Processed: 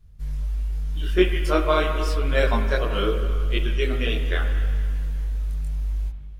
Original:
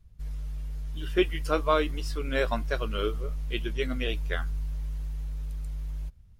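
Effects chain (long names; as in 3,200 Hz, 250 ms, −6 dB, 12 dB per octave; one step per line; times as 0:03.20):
spring reverb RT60 2.3 s, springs 50/54/59 ms, chirp 45 ms, DRR 6 dB
multi-voice chorus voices 2, 0.84 Hz, delay 23 ms, depth 2.5 ms
level +7.5 dB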